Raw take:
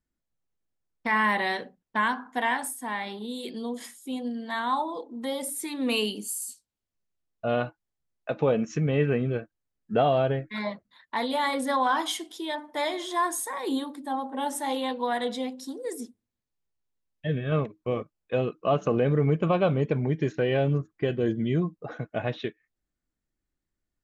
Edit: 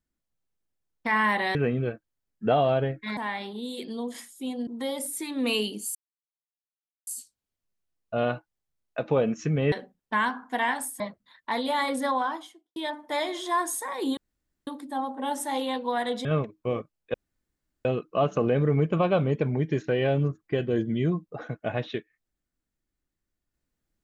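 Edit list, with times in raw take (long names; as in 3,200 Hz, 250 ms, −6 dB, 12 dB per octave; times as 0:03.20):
0:01.55–0:02.83: swap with 0:09.03–0:10.65
0:04.33–0:05.10: remove
0:06.38: splice in silence 1.12 s
0:11.61–0:12.41: fade out and dull
0:13.82: splice in room tone 0.50 s
0:15.40–0:17.46: remove
0:18.35: splice in room tone 0.71 s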